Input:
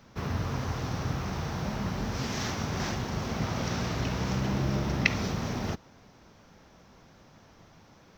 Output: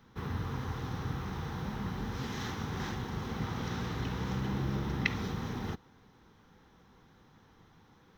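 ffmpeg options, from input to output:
ffmpeg -i in.wav -af "superequalizer=8b=0.355:12b=0.631:14b=0.447:15b=0.501,volume=-4.5dB" out.wav

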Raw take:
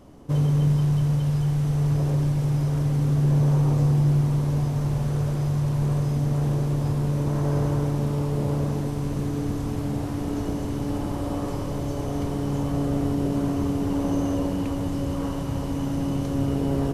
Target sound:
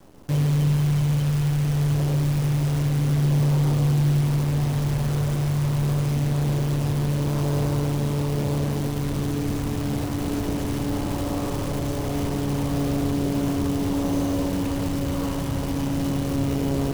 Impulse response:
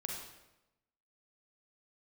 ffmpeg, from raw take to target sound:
-filter_complex "[0:a]asplit=2[link_01][link_02];[link_02]alimiter=limit=-20.5dB:level=0:latency=1:release=24,volume=-1dB[link_03];[link_01][link_03]amix=inputs=2:normalize=0,acrusher=bits=6:dc=4:mix=0:aa=0.000001,volume=-3.5dB"

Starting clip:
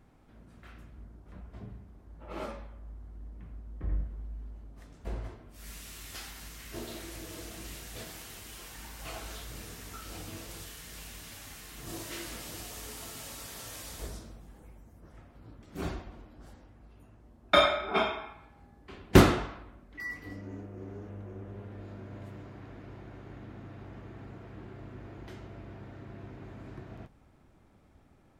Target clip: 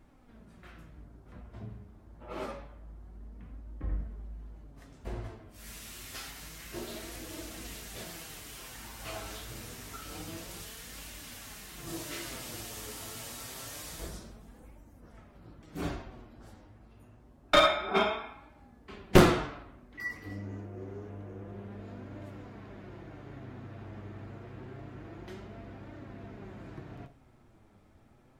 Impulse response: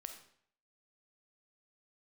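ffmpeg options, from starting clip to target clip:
-filter_complex "[0:a]flanger=delay=3.2:depth=6.6:regen=52:speed=0.27:shape=triangular,aeval=exprs='clip(val(0),-1,0.0708)':channel_layout=same,asplit=2[link_01][link_02];[1:a]atrim=start_sample=2205,atrim=end_sample=4410[link_03];[link_02][link_03]afir=irnorm=-1:irlink=0,volume=2.5dB[link_04];[link_01][link_04]amix=inputs=2:normalize=0"

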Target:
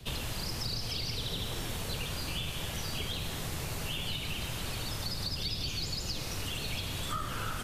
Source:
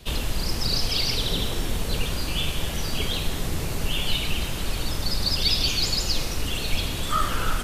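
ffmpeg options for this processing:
ffmpeg -i in.wav -filter_complex "[0:a]equalizer=frequency=110:width_type=o:width=1.2:gain=8,acrossover=split=84|530[link_01][link_02][link_03];[link_01]acompressor=threshold=-36dB:ratio=4[link_04];[link_02]acompressor=threshold=-36dB:ratio=4[link_05];[link_03]acompressor=threshold=-31dB:ratio=4[link_06];[link_04][link_05][link_06]amix=inputs=3:normalize=0,volume=-4.5dB" out.wav

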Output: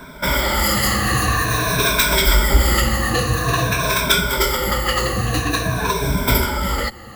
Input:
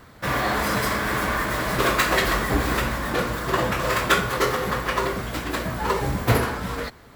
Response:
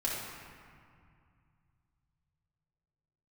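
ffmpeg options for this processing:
-filter_complex "[0:a]afftfilt=real='re*pow(10,18/40*sin(2*PI*(1.6*log(max(b,1)*sr/1024/100)/log(2)-(-0.49)*(pts-256)/sr)))':imag='im*pow(10,18/40*sin(2*PI*(1.6*log(max(b,1)*sr/1024/100)/log(2)-(-0.49)*(pts-256)/sr)))':win_size=1024:overlap=0.75,apsyclip=9.5dB,acrossover=split=130|3000[link_01][link_02][link_03];[link_02]acompressor=threshold=-20dB:ratio=3[link_04];[link_01][link_04][link_03]amix=inputs=3:normalize=0,volume=-2dB"

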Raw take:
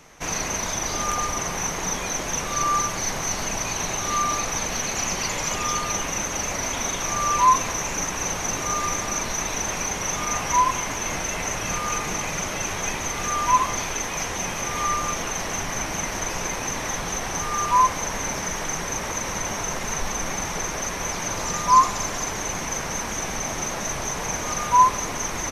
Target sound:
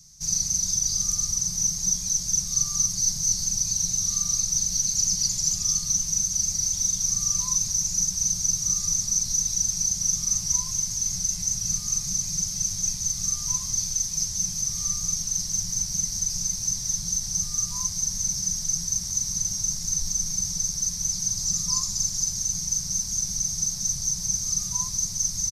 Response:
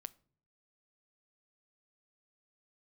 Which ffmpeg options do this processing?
-af "firequalizer=gain_entry='entry(180,0);entry(280,-28);entry(2800,-21);entry(4700,9);entry(10000,2)':delay=0.05:min_phase=1,volume=-2dB"

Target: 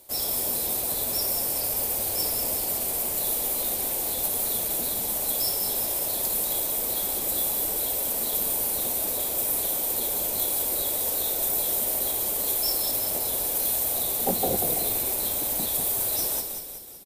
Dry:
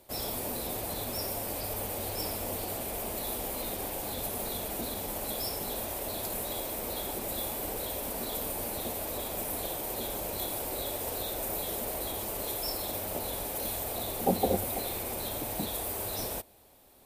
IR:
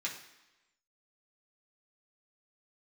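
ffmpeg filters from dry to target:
-filter_complex "[0:a]bass=frequency=250:gain=-3,treble=frequency=4000:gain=10,aeval=exprs='clip(val(0),-1,0.133)':channel_layout=same,asplit=2[link_01][link_02];[link_02]asplit=7[link_03][link_04][link_05][link_06][link_07][link_08][link_09];[link_03]adelay=188,afreqshift=-44,volume=-6.5dB[link_10];[link_04]adelay=376,afreqshift=-88,volume=-12dB[link_11];[link_05]adelay=564,afreqshift=-132,volume=-17.5dB[link_12];[link_06]adelay=752,afreqshift=-176,volume=-23dB[link_13];[link_07]adelay=940,afreqshift=-220,volume=-28.6dB[link_14];[link_08]adelay=1128,afreqshift=-264,volume=-34.1dB[link_15];[link_09]adelay=1316,afreqshift=-308,volume=-39.6dB[link_16];[link_10][link_11][link_12][link_13][link_14][link_15][link_16]amix=inputs=7:normalize=0[link_17];[link_01][link_17]amix=inputs=2:normalize=0"

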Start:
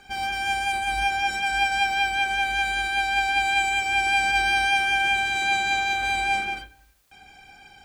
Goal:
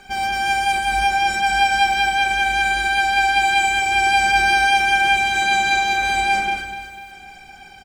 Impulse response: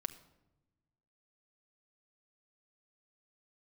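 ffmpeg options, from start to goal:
-filter_complex "[0:a]aecho=1:1:248|496|744|992|1240:0.251|0.131|0.0679|0.0353|0.0184[link_01];[1:a]atrim=start_sample=2205[link_02];[link_01][link_02]afir=irnorm=-1:irlink=0,volume=7dB"

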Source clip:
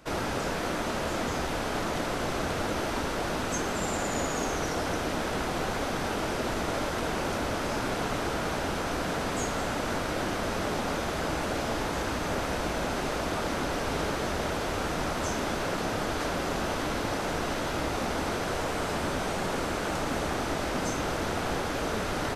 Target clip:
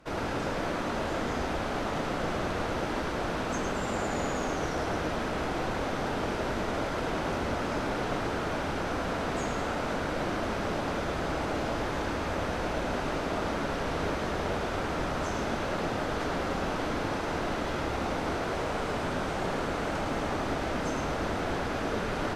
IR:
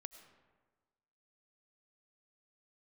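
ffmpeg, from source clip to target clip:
-filter_complex "[0:a]aemphasis=mode=reproduction:type=cd,asplit=2[link_01][link_02];[1:a]atrim=start_sample=2205,lowpass=7600,adelay=106[link_03];[link_02][link_03]afir=irnorm=-1:irlink=0,volume=2.5dB[link_04];[link_01][link_04]amix=inputs=2:normalize=0,volume=-2.5dB"

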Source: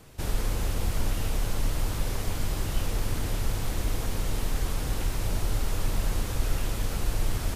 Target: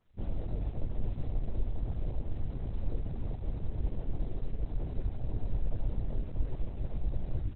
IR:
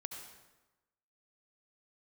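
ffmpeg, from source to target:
-filter_complex "[0:a]adynamicequalizer=threshold=0.00126:dfrequency=6000:dqfactor=1.2:tfrequency=6000:tqfactor=1.2:attack=5:release=100:ratio=0.375:range=2.5:mode=cutabove:tftype=bell,aresample=16000,aresample=44100,afwtdn=0.0282,asplit=2[link_01][link_02];[1:a]atrim=start_sample=2205,adelay=24[link_03];[link_02][link_03]afir=irnorm=-1:irlink=0,volume=-17dB[link_04];[link_01][link_04]amix=inputs=2:normalize=0,asplit=4[link_05][link_06][link_07][link_08];[link_06]asetrate=33038,aresample=44100,atempo=1.33484,volume=-1dB[link_09];[link_07]asetrate=55563,aresample=44100,atempo=0.793701,volume=-1dB[link_10];[link_08]asetrate=58866,aresample=44100,atempo=0.749154,volume=-13dB[link_11];[link_05][link_09][link_10][link_11]amix=inputs=4:normalize=0,highshelf=frequency=4400:gain=3,volume=-8dB" -ar 48000 -c:a libopus -b:a 8k

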